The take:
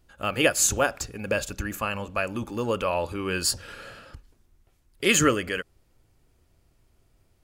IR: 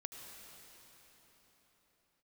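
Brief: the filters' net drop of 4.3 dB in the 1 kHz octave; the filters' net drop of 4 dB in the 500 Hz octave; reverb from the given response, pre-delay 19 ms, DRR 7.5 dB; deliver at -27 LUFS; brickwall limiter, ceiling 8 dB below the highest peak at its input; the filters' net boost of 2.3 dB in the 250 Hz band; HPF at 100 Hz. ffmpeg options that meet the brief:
-filter_complex "[0:a]highpass=100,equalizer=f=250:t=o:g=5,equalizer=f=500:t=o:g=-5,equalizer=f=1000:t=o:g=-5,alimiter=limit=0.178:level=0:latency=1,asplit=2[s0][s1];[1:a]atrim=start_sample=2205,adelay=19[s2];[s1][s2]afir=irnorm=-1:irlink=0,volume=0.596[s3];[s0][s3]amix=inputs=2:normalize=0,volume=1.19"

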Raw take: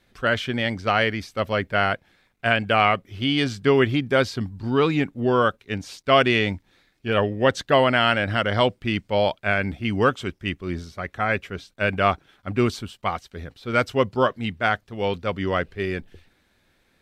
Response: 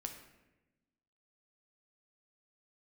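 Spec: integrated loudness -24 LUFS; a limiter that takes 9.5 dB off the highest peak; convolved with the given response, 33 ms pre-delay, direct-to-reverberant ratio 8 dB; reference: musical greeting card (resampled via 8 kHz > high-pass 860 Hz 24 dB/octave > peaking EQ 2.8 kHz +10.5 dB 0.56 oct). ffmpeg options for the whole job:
-filter_complex "[0:a]alimiter=limit=0.211:level=0:latency=1,asplit=2[s0][s1];[1:a]atrim=start_sample=2205,adelay=33[s2];[s1][s2]afir=irnorm=-1:irlink=0,volume=0.531[s3];[s0][s3]amix=inputs=2:normalize=0,aresample=8000,aresample=44100,highpass=f=860:w=0.5412,highpass=f=860:w=1.3066,equalizer=f=2800:t=o:w=0.56:g=10.5,volume=1.19"

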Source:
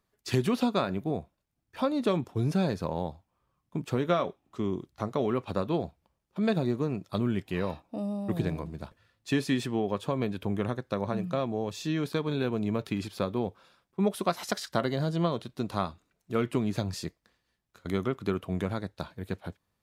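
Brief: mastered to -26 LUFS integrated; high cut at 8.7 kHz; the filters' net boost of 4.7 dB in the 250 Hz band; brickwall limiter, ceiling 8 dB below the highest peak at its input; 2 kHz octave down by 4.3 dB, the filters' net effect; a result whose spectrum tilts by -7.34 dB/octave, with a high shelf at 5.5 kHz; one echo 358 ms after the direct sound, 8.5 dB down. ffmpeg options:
-af "lowpass=8700,equalizer=f=250:t=o:g=6,equalizer=f=2000:t=o:g=-6.5,highshelf=f=5500:g=4.5,alimiter=limit=0.126:level=0:latency=1,aecho=1:1:358:0.376,volume=1.58"

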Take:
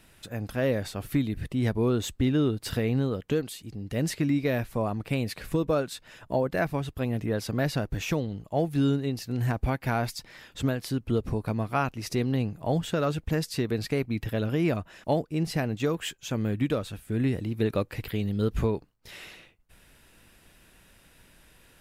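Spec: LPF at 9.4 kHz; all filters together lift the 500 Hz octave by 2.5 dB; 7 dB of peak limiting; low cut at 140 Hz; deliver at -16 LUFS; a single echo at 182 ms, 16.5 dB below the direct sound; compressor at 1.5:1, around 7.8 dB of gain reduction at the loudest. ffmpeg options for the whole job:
-af "highpass=140,lowpass=9400,equalizer=f=500:t=o:g=3,acompressor=threshold=0.00794:ratio=1.5,alimiter=level_in=1.19:limit=0.0631:level=0:latency=1,volume=0.841,aecho=1:1:182:0.15,volume=11.9"

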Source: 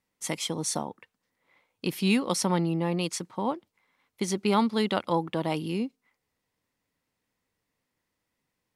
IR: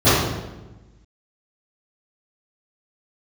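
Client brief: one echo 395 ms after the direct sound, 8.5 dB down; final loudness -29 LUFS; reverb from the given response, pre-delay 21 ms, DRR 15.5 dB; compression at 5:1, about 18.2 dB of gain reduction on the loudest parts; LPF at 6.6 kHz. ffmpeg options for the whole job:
-filter_complex "[0:a]lowpass=6600,acompressor=threshold=0.00891:ratio=5,aecho=1:1:395:0.376,asplit=2[s0][s1];[1:a]atrim=start_sample=2205,adelay=21[s2];[s1][s2]afir=irnorm=-1:irlink=0,volume=0.00841[s3];[s0][s3]amix=inputs=2:normalize=0,volume=5.62"

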